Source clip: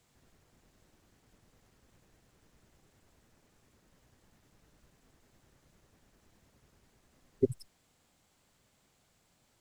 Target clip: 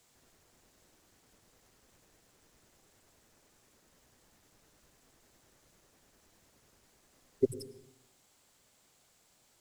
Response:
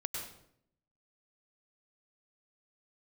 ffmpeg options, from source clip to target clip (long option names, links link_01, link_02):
-filter_complex "[0:a]bass=frequency=250:gain=-9,treble=frequency=4000:gain=5,asplit=2[link_01][link_02];[1:a]atrim=start_sample=2205,lowshelf=frequency=350:gain=9.5[link_03];[link_02][link_03]afir=irnorm=-1:irlink=0,volume=-14.5dB[link_04];[link_01][link_04]amix=inputs=2:normalize=0"